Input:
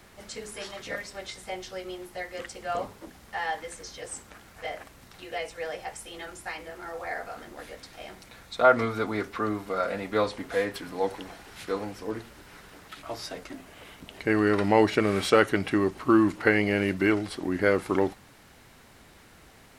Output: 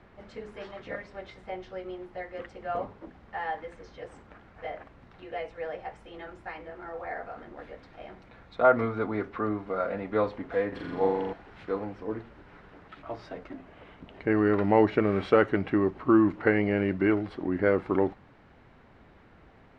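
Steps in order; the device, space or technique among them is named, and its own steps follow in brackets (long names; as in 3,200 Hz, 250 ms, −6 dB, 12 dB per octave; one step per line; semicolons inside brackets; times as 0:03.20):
phone in a pocket (low-pass filter 3,100 Hz 12 dB per octave; high-shelf EQ 2,300 Hz −11.5 dB)
0:10.68–0:11.33: flutter between parallel walls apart 7.2 metres, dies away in 1.2 s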